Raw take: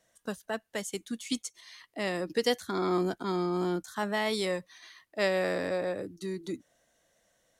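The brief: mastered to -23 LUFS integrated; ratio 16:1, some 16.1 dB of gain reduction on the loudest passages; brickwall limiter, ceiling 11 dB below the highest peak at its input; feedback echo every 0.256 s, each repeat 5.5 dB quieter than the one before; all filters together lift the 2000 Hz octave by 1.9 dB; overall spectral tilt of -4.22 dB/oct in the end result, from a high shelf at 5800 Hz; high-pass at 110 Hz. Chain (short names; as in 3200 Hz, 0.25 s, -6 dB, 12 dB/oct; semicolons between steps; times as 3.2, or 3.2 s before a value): HPF 110 Hz; bell 2000 Hz +3 dB; high shelf 5800 Hz -8 dB; compressor 16:1, threshold -38 dBFS; limiter -36.5 dBFS; feedback echo 0.256 s, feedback 53%, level -5.5 dB; gain +22.5 dB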